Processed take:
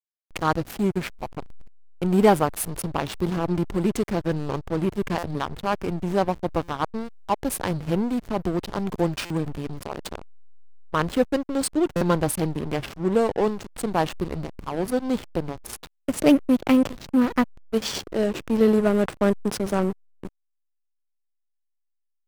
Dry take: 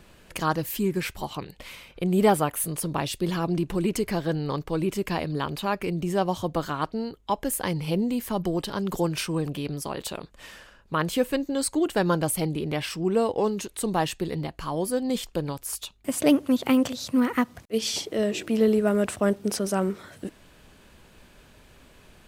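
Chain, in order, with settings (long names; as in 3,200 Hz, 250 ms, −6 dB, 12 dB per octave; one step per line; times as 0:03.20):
slack as between gear wheels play −23.5 dBFS
buffer that repeats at 0:05.18/0:06.63/0:09.25/0:11.96, samples 256, times 8
level +3.5 dB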